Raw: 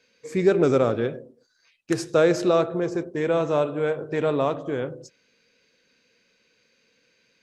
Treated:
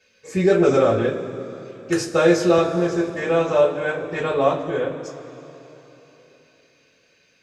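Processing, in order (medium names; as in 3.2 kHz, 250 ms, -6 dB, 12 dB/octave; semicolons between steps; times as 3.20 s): two-slope reverb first 0.21 s, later 3.6 s, from -22 dB, DRR -7.5 dB; 2.58–3.10 s: three bands compressed up and down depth 40%; trim -3 dB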